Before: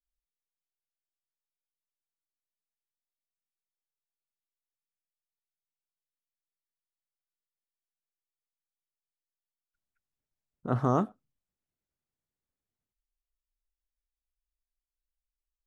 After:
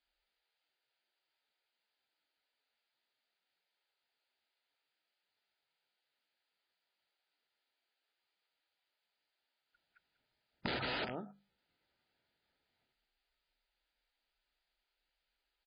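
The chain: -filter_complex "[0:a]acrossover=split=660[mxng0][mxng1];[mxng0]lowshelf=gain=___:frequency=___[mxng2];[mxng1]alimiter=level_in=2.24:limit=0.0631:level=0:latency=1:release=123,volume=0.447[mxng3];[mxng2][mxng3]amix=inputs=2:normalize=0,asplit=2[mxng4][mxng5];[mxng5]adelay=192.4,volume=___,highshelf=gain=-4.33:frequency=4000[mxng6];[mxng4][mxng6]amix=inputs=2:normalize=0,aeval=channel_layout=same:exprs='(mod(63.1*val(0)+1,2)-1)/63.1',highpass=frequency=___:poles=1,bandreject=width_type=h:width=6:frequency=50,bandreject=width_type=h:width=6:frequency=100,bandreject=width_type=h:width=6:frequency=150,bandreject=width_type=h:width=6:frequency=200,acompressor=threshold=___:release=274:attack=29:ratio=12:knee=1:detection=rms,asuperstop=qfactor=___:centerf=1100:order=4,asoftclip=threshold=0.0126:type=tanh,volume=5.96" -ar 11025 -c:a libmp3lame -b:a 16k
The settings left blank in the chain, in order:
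-10.5, 420, 0.158, 61, 0.00316, 5.1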